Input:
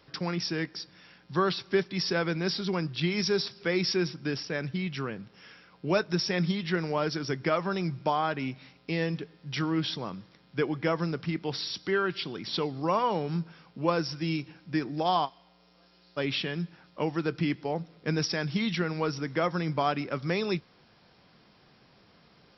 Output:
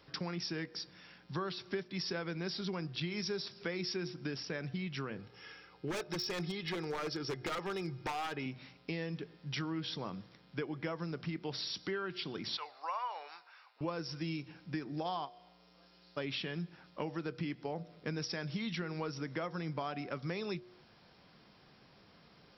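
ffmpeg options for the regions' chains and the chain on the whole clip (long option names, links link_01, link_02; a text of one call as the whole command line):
ffmpeg -i in.wav -filter_complex "[0:a]asettb=1/sr,asplit=3[link_01][link_02][link_03];[link_01]atrim=end=5.184[link_04];[link_02]atrim=start=5.18:end=8.46,asetpts=PTS-STARTPTS,afade=type=in:duration=0.004:curve=qsin,afade=type=out:start_time=3.276:duration=0.004:curve=qsin,aecho=1:1:2.4:0.53,atrim=end_sample=144648,aeval=exprs='0.0668*(abs(mod(val(0)/0.0668+3,4)-2)-1)':channel_layout=same[link_05];[link_03]atrim=start=8.456[link_06];[link_04][link_05]acrossfade=duration=0.004:curve1=hsin:curve2=qsin[link_07];[link_07][link_06]acrossfade=duration=0.004:curve1=qsin:curve2=hsin,asettb=1/sr,asplit=3[link_08][link_09][link_10];[link_08]atrim=end=12.574[link_11];[link_09]atrim=start=12.57:end=13.81,asetpts=PTS-STARTPTS,afade=type=in:duration=0.004:curve=qsin,afade=type=out:start_time=1.236:duration=0.004:curve=qsin,highpass=frequency=780:width=0.5412,highpass=frequency=780:width=1.3066,equalizer=frequency=5300:width_type=o:width=0.36:gain=-5.5,bandreject=frequency=3200:width=7.4[link_12];[link_10]atrim=start=13.806[link_13];[link_11][link_12]acrossfade=duration=0.004:curve1=hsin:curve2=qsin[link_14];[link_14][link_13]acrossfade=duration=0.004:curve1=qsin:curve2=hsin,bandreject=frequency=120.5:width_type=h:width=4,bandreject=frequency=241:width_type=h:width=4,bandreject=frequency=361.5:width_type=h:width=4,bandreject=frequency=482:width_type=h:width=4,bandreject=frequency=602.5:width_type=h:width=4,bandreject=frequency=723:width_type=h:width=4,acompressor=threshold=-34dB:ratio=4,volume=-2dB" out.wav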